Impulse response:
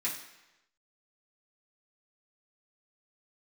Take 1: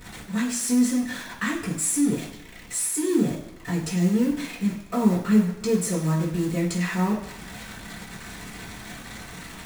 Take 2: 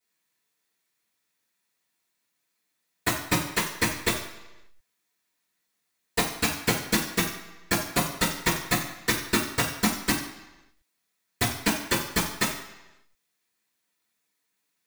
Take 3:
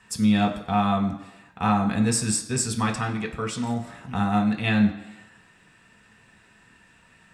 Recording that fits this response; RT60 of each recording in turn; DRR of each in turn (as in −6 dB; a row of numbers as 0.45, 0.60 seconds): 1; 1.0, 1.0, 1.0 seconds; −8.5, −15.5, 1.5 decibels